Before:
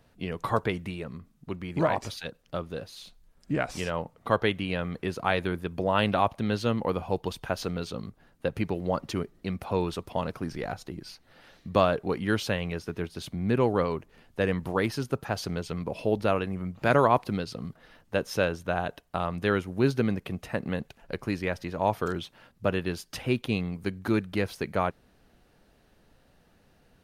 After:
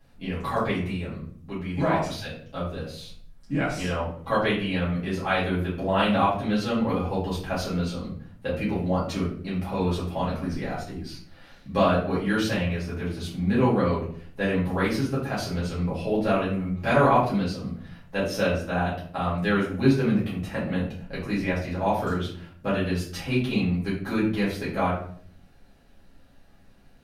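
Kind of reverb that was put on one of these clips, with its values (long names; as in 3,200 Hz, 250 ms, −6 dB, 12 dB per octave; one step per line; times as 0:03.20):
rectangular room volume 65 cubic metres, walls mixed, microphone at 2.2 metres
level −7.5 dB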